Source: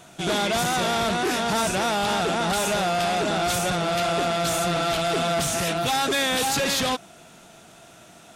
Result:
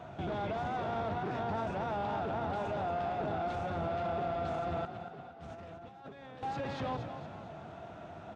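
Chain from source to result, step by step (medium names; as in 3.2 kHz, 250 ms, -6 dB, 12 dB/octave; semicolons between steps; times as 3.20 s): octave divider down 1 oct, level +3 dB; high-pass 71 Hz; peaking EQ 760 Hz +6.5 dB 1.6 oct; hum notches 60/120/180/240/300/360/420/480/540 Hz; 4.85–6.43 s: compressor with a negative ratio -38 dBFS, ratio -0.5; peak limiter -26.5 dBFS, peak gain reduction 16.5 dB; tape spacing loss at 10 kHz 36 dB; frequency-shifting echo 230 ms, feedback 47%, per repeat +30 Hz, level -10 dB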